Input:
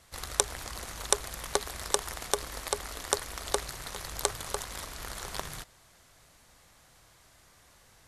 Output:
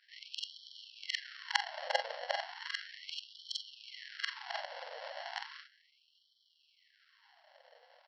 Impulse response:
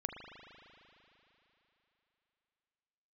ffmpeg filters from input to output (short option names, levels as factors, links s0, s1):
-af "afftfilt=real='re':imag='-im':win_size=4096:overlap=0.75,aresample=11025,acrusher=samples=9:mix=1:aa=0.000001,aresample=44100,aeval=exprs='0.211*(cos(1*acos(clip(val(0)/0.211,-1,1)))-cos(1*PI/2))+0.075*(cos(2*acos(clip(val(0)/0.211,-1,1)))-cos(2*PI/2))+0.0106*(cos(3*acos(clip(val(0)/0.211,-1,1)))-cos(3*PI/2))':c=same,afftfilt=real='re*gte(b*sr/1024,470*pow(3000/470,0.5+0.5*sin(2*PI*0.35*pts/sr)))':imag='im*gte(b*sr/1024,470*pow(3000/470,0.5+0.5*sin(2*PI*0.35*pts/sr)))':win_size=1024:overlap=0.75,volume=3.16"